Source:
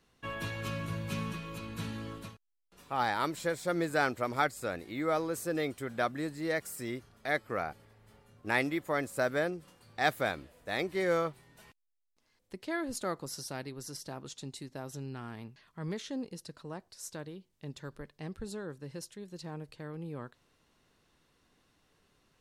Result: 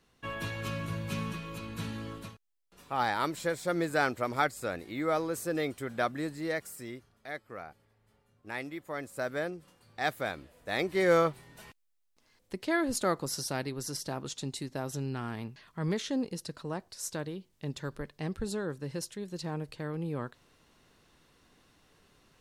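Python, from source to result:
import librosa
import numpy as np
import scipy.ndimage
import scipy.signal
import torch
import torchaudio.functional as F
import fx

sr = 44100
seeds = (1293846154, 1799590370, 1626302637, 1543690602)

y = fx.gain(x, sr, db=fx.line((6.35, 1.0), (7.33, -9.0), (8.54, -9.0), (9.44, -2.5), (10.26, -2.5), (11.21, 6.0)))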